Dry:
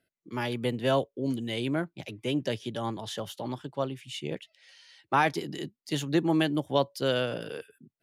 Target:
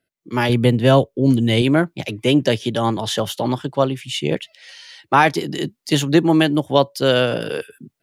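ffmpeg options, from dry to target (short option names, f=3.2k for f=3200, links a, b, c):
-filter_complex "[0:a]asettb=1/sr,asplit=3[a][b][c];[a]atrim=end=0.494[d];[b]atrim=start=0.49:end=1.62,asetpts=PTS-STARTPTS,afade=t=in:d=0.004:c=qsin,afade=t=out:st=1.126:d=0.004:c=qsin,lowshelf=f=190:g=11[e];[c]atrim=start=1.616[f];[d][e]acrossfade=d=0.004:c1=hsin:c2=qsin[g];[g][f]acrossfade=d=0.004:c1=qsin:c2=hsin,dynaudnorm=f=190:g=3:m=14.5dB"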